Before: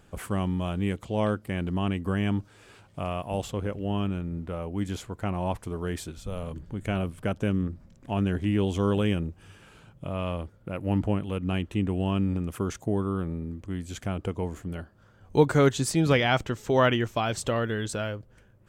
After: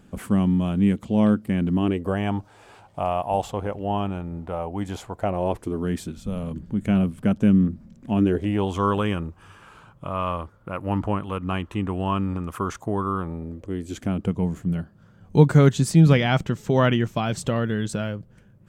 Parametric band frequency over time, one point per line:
parametric band +13 dB 0.91 octaves
0:01.72 220 Hz
0:02.20 800 Hz
0:05.10 800 Hz
0:05.92 210 Hz
0:08.11 210 Hz
0:08.70 1,100 Hz
0:13.16 1,100 Hz
0:14.32 170 Hz

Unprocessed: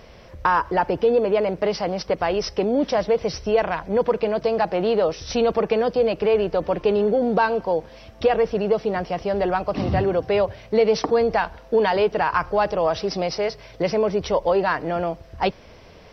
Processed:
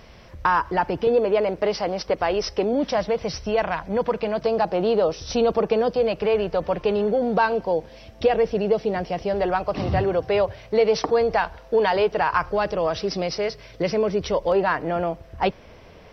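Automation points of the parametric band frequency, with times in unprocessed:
parametric band −5 dB 0.81 octaves
510 Hz
from 0:01.07 160 Hz
from 0:02.73 400 Hz
from 0:04.46 2,000 Hz
from 0:05.93 320 Hz
from 0:07.52 1,200 Hz
from 0:09.33 240 Hz
from 0:12.49 810 Hz
from 0:14.52 4,800 Hz

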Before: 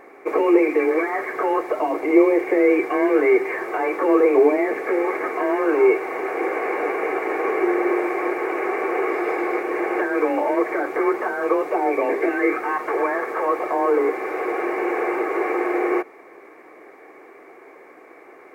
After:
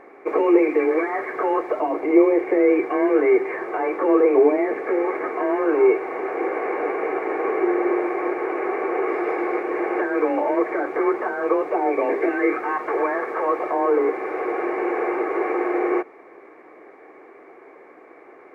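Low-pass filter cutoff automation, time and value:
low-pass filter 6 dB per octave
2,300 Hz
from 0:01.80 1,600 Hz
from 0:09.08 2,000 Hz
from 0:11.98 2,500 Hz
from 0:13.71 2,000 Hz

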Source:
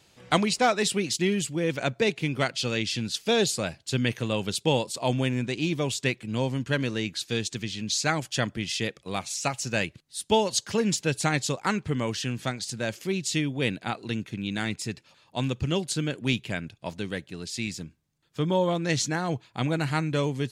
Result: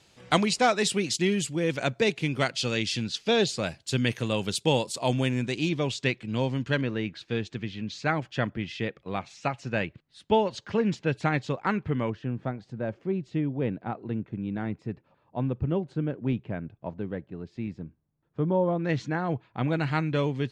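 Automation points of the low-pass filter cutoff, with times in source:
10,000 Hz
from 0:03.04 5,200 Hz
from 0:03.63 12,000 Hz
from 0:05.69 4,900 Hz
from 0:06.81 2,200 Hz
from 0:12.10 1,000 Hz
from 0:18.79 1,900 Hz
from 0:19.68 3,400 Hz

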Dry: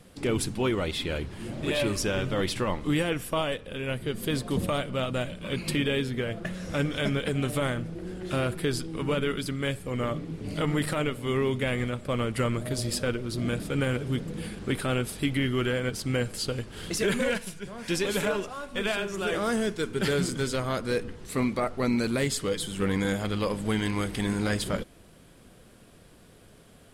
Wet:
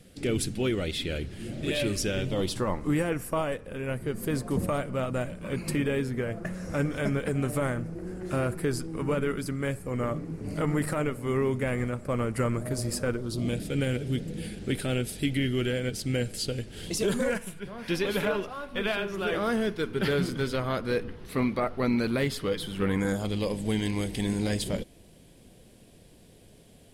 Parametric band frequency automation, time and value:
parametric band −13.5 dB 0.74 octaves
0:02.17 1,000 Hz
0:02.74 3,400 Hz
0:13.09 3,400 Hz
0:13.60 1,100 Hz
0:16.81 1,100 Hz
0:17.68 7,600 Hz
0:22.83 7,600 Hz
0:23.33 1,300 Hz

